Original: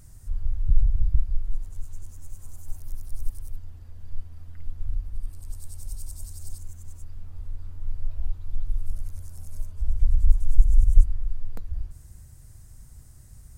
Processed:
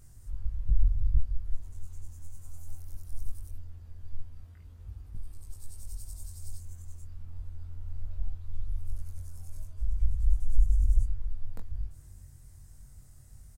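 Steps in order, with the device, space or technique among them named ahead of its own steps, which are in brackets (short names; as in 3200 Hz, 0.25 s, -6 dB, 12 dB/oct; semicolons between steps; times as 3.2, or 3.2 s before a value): 4.42–5.15 HPF 63 Hz; double-tracked vocal (doubler 22 ms -12.5 dB; chorus 0.19 Hz, delay 19.5 ms, depth 4 ms); gain -2 dB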